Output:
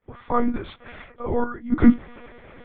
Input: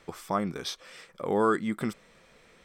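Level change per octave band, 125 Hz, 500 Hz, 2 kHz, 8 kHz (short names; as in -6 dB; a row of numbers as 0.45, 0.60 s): +6.5 dB, +1.0 dB, +2.0 dB, under -35 dB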